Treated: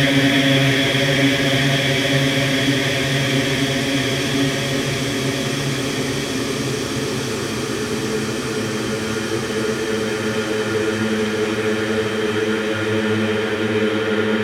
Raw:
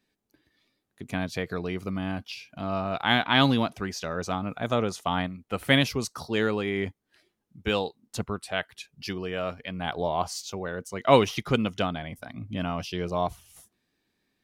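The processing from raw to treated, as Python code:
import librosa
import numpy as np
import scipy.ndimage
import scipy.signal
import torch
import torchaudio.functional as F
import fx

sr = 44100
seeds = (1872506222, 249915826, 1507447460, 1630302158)

y = fx.paulstretch(x, sr, seeds[0], factor=25.0, window_s=1.0, from_s=5.84)
y = y * 10.0 ** (8.0 / 20.0)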